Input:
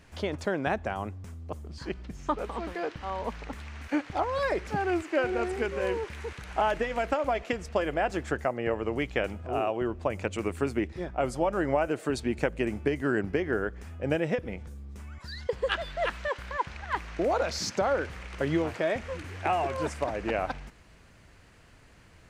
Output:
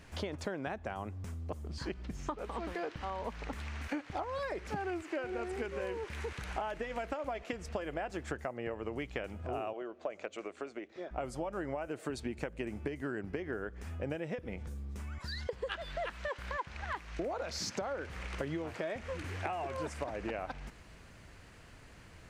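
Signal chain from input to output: compression 6:1, threshold -36 dBFS, peak gain reduction 14.5 dB; 9.73–11.11 s: cabinet simulation 400–6600 Hz, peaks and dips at 630 Hz +5 dB, 920 Hz -6 dB, 1.8 kHz -3 dB, 2.7 kHz -3 dB, 5.1 kHz -5 dB; 16.93–17.38 s: three bands expanded up and down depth 70%; trim +1 dB

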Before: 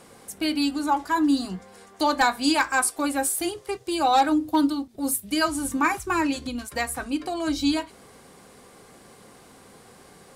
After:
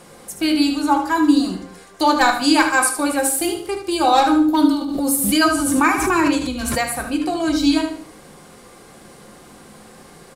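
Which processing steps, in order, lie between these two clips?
feedback delay 75 ms, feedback 32%, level -8.5 dB; reverberation RT60 0.40 s, pre-delay 6 ms, DRR 6.5 dB; 4.81–6.86 s: swell ahead of each attack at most 34 dB/s; trim +4.5 dB

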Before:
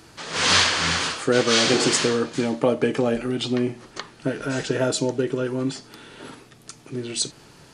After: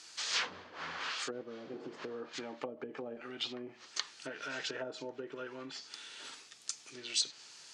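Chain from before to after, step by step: low-pass 7.2 kHz 24 dB/octave; low-pass that closes with the level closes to 360 Hz, closed at -16 dBFS; differentiator; trim +5.5 dB

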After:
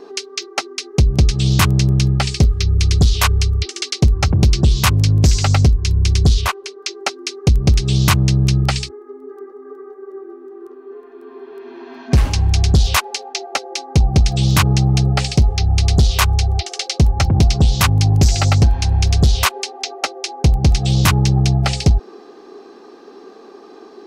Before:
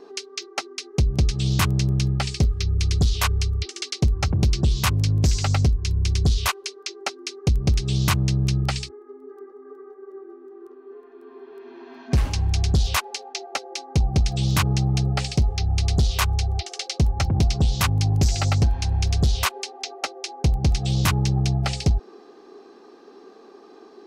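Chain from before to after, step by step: 6.41–6.83 s: treble shelf 2.4 kHz -9 dB; trim +7 dB

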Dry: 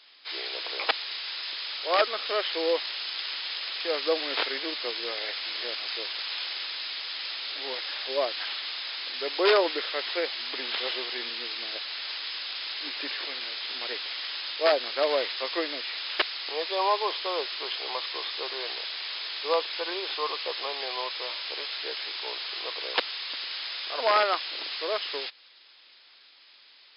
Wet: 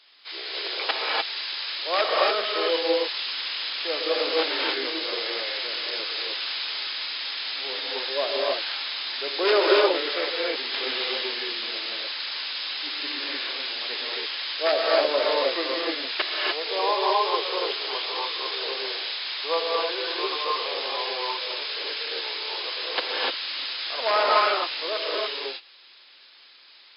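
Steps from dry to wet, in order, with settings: gated-style reverb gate 320 ms rising, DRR -4 dB; trim -1.5 dB

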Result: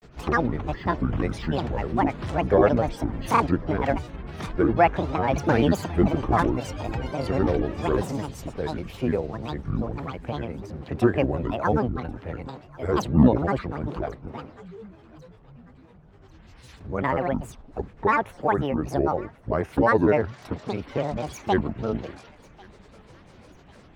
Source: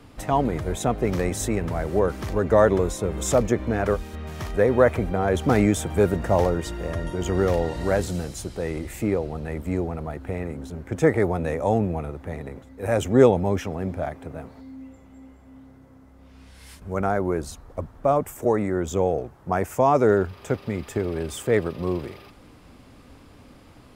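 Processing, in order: Savitzky-Golay filter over 15 samples; granulator, spray 10 ms, pitch spread up and down by 12 st; thinning echo 1094 ms, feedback 54%, high-pass 1.1 kHz, level -21 dB

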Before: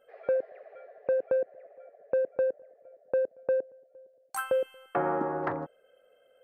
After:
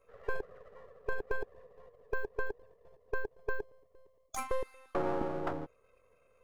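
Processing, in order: partial rectifier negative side -12 dB; formant shift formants -4 st; trim -1 dB

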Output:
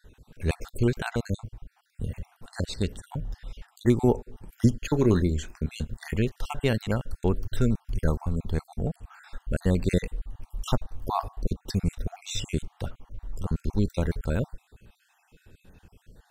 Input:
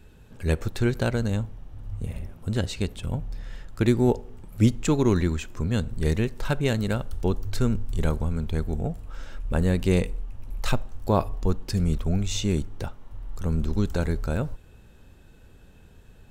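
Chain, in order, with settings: random holes in the spectrogram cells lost 45%; 4.91–6.14 s: doubling 27 ms -13 dB

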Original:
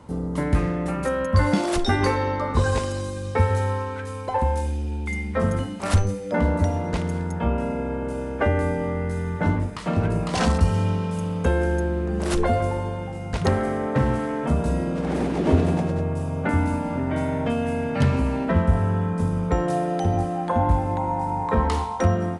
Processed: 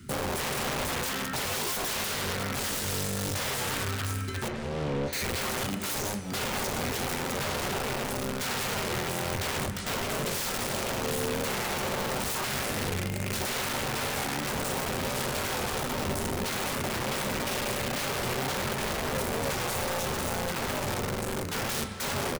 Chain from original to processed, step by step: Chebyshev band-stop 390–1300 Hz, order 4; treble shelf 4.7 kHz +8.5 dB; in parallel at +1 dB: peak limiter -17.5 dBFS, peak gain reduction 10 dB; on the sum: gain riding within 4 dB 2 s; integer overflow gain 19 dB; short-mantissa float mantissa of 2-bit; 4.48–5.13 s: tape spacing loss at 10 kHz 26 dB; speakerphone echo 200 ms, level -7 dB; on a send at -9 dB: reverberation, pre-delay 3 ms; on the sum: warped record 45 rpm, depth 100 cents; trim -8 dB

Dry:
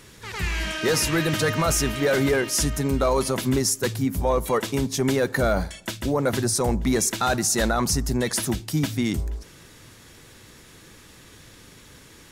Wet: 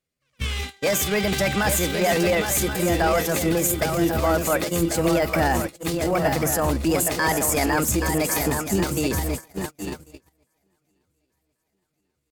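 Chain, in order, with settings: shuffle delay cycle 1092 ms, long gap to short 3:1, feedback 50%, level -6.5 dB; pitch shift +4 st; gate -26 dBFS, range -36 dB

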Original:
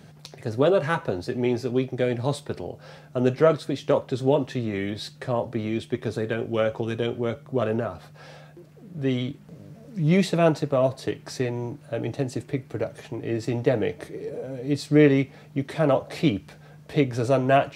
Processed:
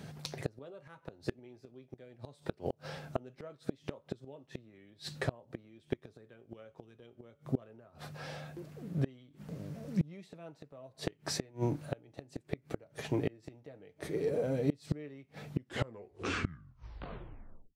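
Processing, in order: tape stop on the ending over 2.31 s; inverted gate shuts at -20 dBFS, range -31 dB; trim +1 dB

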